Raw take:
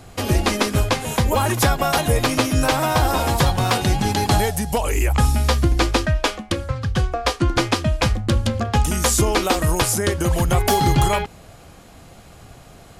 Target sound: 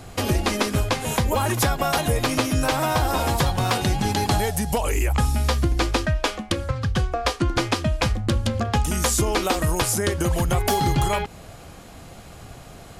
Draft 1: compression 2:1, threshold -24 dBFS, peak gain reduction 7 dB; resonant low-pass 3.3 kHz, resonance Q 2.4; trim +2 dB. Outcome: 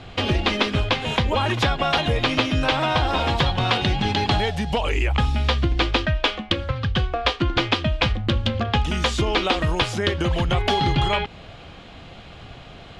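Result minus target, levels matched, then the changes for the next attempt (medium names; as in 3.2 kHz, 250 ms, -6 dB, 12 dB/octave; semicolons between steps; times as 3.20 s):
4 kHz band +4.5 dB
remove: resonant low-pass 3.3 kHz, resonance Q 2.4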